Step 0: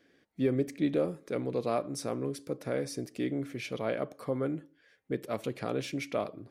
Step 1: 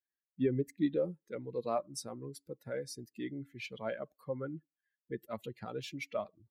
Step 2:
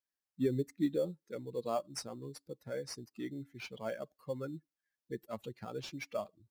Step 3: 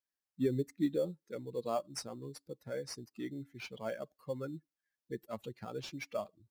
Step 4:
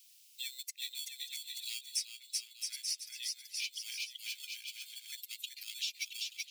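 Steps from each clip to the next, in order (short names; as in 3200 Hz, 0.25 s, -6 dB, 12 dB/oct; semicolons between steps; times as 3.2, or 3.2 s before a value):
per-bin expansion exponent 2
bell 5300 Hz +5.5 dB 0.59 oct; in parallel at -11.5 dB: sample-rate reducer 3900 Hz, jitter 0%; on the sum: gain -3 dB
nothing audible
steep high-pass 2500 Hz 48 dB/oct; bouncing-ball echo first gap 0.38 s, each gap 0.75×, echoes 5; three-band squash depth 70%; gain +12 dB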